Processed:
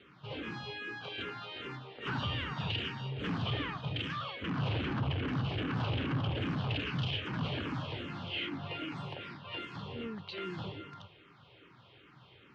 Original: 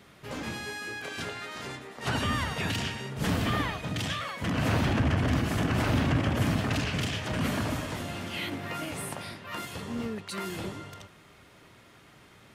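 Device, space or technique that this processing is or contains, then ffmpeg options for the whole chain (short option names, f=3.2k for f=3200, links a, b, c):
barber-pole phaser into a guitar amplifier: -filter_complex "[0:a]asplit=2[a][b];[b]afreqshift=-2.5[c];[a][c]amix=inputs=2:normalize=1,asoftclip=type=tanh:threshold=-28dB,highpass=88,equalizer=f=130:t=q:w=4:g=5,equalizer=f=220:t=q:w=4:g=-5,equalizer=f=650:t=q:w=4:g=-6,equalizer=f=1.9k:t=q:w=4:g=-6,equalizer=f=3k:t=q:w=4:g=5,lowpass=f=3.9k:w=0.5412,lowpass=f=3.9k:w=1.3066"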